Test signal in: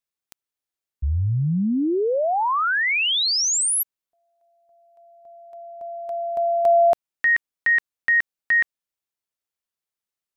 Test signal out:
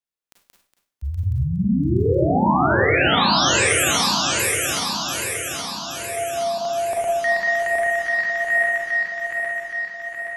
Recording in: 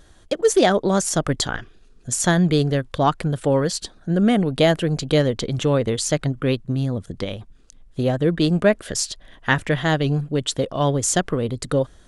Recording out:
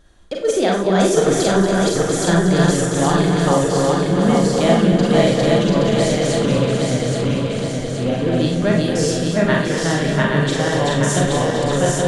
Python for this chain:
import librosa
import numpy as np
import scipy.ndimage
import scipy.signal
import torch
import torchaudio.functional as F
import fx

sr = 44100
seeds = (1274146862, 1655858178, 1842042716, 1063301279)

p1 = fx.reverse_delay_fb(x, sr, ms=411, feedback_pct=75, wet_db=-0.5)
p2 = fx.high_shelf(p1, sr, hz=5200.0, db=-4.5)
p3 = p2 + fx.echo_multitap(p2, sr, ms=(236, 692), db=(-9.5, -8.5), dry=0)
p4 = fx.rev_schroeder(p3, sr, rt60_s=0.4, comb_ms=32, drr_db=0.0)
y = F.gain(torch.from_numpy(p4), -4.0).numpy()